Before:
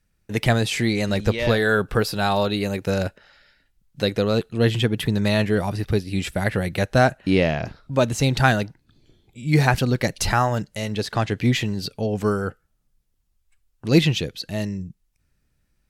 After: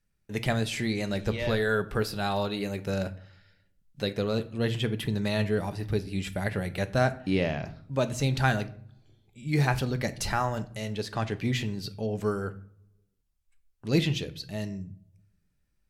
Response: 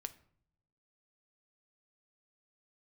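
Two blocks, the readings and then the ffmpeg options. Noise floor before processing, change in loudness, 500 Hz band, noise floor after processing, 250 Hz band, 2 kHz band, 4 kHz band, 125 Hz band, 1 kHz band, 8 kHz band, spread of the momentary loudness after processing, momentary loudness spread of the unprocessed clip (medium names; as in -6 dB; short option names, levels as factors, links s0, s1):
-69 dBFS, -7.5 dB, -7.5 dB, -73 dBFS, -7.5 dB, -8.0 dB, -8.0 dB, -7.0 dB, -8.0 dB, -8.0 dB, 10 LU, 9 LU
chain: -filter_complex "[1:a]atrim=start_sample=2205[s0];[0:a][s0]afir=irnorm=-1:irlink=0,volume=0.596"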